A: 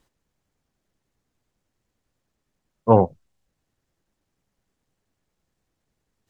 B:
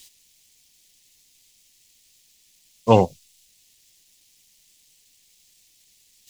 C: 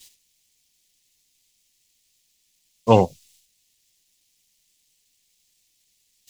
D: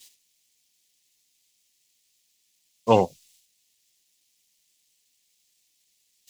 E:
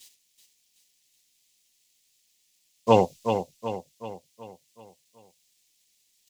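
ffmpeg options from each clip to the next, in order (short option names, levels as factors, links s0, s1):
-af "aexciter=amount=12.8:drive=7:freq=2200"
-af "agate=range=0.398:threshold=0.00158:ratio=16:detection=peak"
-af "lowshelf=f=120:g=-12,volume=0.794"
-af "aecho=1:1:377|754|1131|1508|1885|2262:0.422|0.207|0.101|0.0496|0.0243|0.0119"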